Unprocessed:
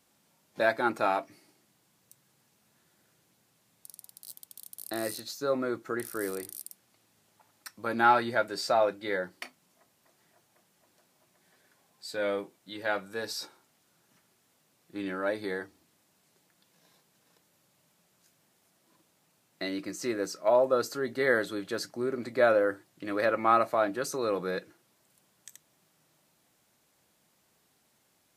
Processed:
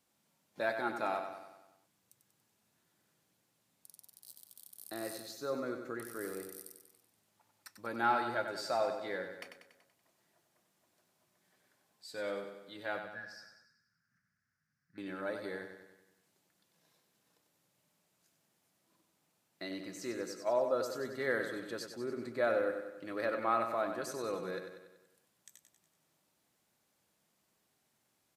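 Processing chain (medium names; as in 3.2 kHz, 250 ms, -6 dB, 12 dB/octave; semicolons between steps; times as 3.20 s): 12.99–14.98 s: FFT filter 140 Hz 0 dB, 240 Hz -7 dB, 350 Hz -26 dB, 930 Hz -20 dB, 1.6 kHz +5 dB, 3.4 kHz -28 dB, 5.1 kHz -7 dB, 7.8 kHz -19 dB; feedback delay 95 ms, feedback 54%, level -7.5 dB; trim -8.5 dB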